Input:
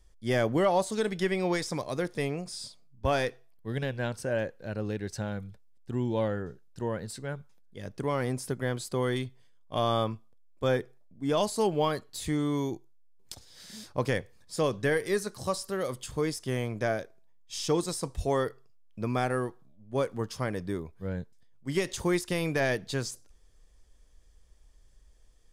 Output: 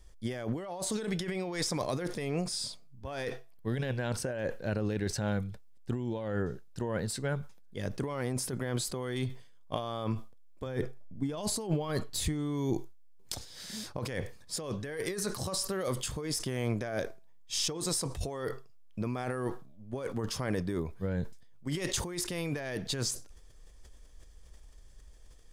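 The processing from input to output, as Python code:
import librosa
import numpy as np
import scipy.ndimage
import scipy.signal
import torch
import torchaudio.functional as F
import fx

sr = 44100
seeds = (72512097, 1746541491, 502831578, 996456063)

y = fx.over_compress(x, sr, threshold_db=-34.0, ratio=-1.0)
y = fx.low_shelf(y, sr, hz=180.0, db=8.5, at=(10.66, 12.73))
y = fx.sustainer(y, sr, db_per_s=100.0)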